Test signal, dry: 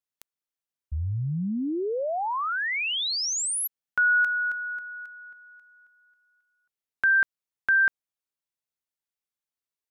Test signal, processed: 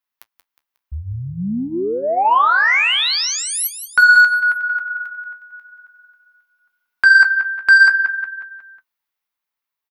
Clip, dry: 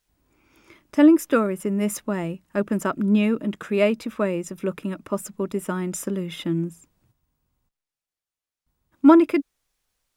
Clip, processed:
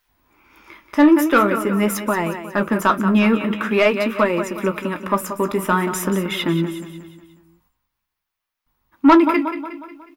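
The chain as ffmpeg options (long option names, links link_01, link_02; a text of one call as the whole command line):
ffmpeg -i in.wav -af "equalizer=frequency=125:width_type=o:width=1:gain=-6,equalizer=frequency=500:width_type=o:width=1:gain=-3,equalizer=frequency=1000:width_type=o:width=1:gain=8,equalizer=frequency=2000:width_type=o:width=1:gain=4,equalizer=frequency=8000:width_type=o:width=1:gain=-11,dynaudnorm=framelen=180:gausssize=13:maxgain=4dB,highshelf=frequency=4000:gain=6.5,aecho=1:1:181|362|543|724|905:0.282|0.135|0.0649|0.0312|0.015,acontrast=81,flanger=delay=7.8:depth=9.7:regen=-47:speed=0.46:shape=sinusoidal,volume=1dB" out.wav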